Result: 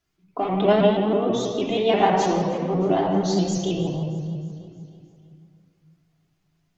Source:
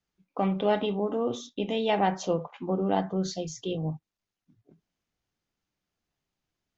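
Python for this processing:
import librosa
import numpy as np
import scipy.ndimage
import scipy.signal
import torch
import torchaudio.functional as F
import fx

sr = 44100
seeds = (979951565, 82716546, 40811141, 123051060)

p1 = fx.level_steps(x, sr, step_db=22)
p2 = x + F.gain(torch.from_numpy(p1), 0.0).numpy()
p3 = fx.echo_feedback(p2, sr, ms=311, feedback_pct=55, wet_db=-19.0)
p4 = fx.room_shoebox(p3, sr, seeds[0], volume_m3=2900.0, walls='mixed', distance_m=3.2)
y = fx.vibrato_shape(p4, sr, shape='saw_up', rate_hz=6.2, depth_cents=100.0)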